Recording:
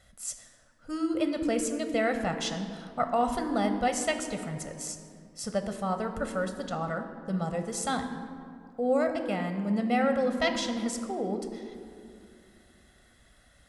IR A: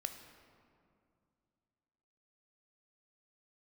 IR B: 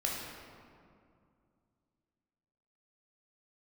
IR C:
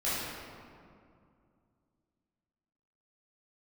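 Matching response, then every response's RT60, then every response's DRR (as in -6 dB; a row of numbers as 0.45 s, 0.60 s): A; 2.4 s, 2.3 s, 2.3 s; 6.5 dB, -3.0 dB, -11.5 dB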